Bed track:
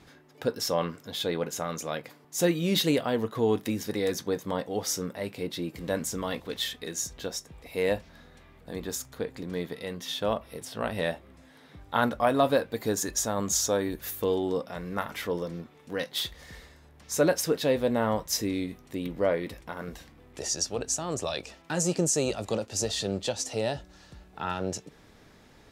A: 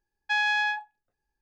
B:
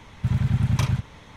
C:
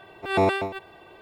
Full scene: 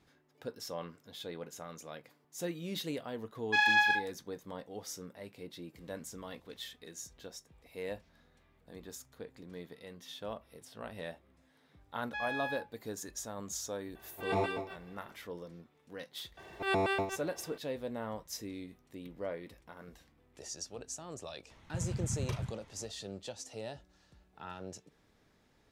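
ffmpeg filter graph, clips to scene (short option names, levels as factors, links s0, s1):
-filter_complex "[1:a]asplit=2[s0][s1];[3:a]asplit=2[s2][s3];[0:a]volume=0.211[s4];[s0]aphaser=in_gain=1:out_gain=1:delay=3:decay=0.43:speed=1.8:type=sinusoidal[s5];[s1]acrossover=split=3400[s6][s7];[s7]acompressor=threshold=0.00631:ratio=4:attack=1:release=60[s8];[s6][s8]amix=inputs=2:normalize=0[s9];[s2]flanger=delay=17:depth=4.2:speed=1.7[s10];[s3]acompressor=threshold=0.0794:ratio=6:attack=3.2:release=140:knee=1:detection=peak[s11];[s5]atrim=end=1.41,asetpts=PTS-STARTPTS,volume=0.75,afade=t=in:d=0.004:c=hsin,afade=t=out:st=1.406:d=0.004:c=hsin,adelay=3230[s12];[s9]atrim=end=1.41,asetpts=PTS-STARTPTS,volume=0.224,afade=t=in:d=0.004:c=hsin,afade=t=out:st=1.406:d=0.004:c=hsin,adelay=11840[s13];[s10]atrim=end=1.21,asetpts=PTS-STARTPTS,volume=0.398,afade=t=in:d=0.004:c=hsin,afade=t=out:st=1.206:d=0.004:c=hsin,adelay=13950[s14];[s11]atrim=end=1.21,asetpts=PTS-STARTPTS,volume=0.631,afade=t=in:d=0.004:c=hsin,afade=t=out:st=1.206:d=0.004:c=hsin,adelay=16370[s15];[2:a]atrim=end=1.36,asetpts=PTS-STARTPTS,volume=0.188,afade=t=in:d=0.004:c=hsin,afade=t=out:st=1.356:d=0.004:c=hsin,adelay=21500[s16];[s4][s12][s13][s14][s15][s16]amix=inputs=6:normalize=0"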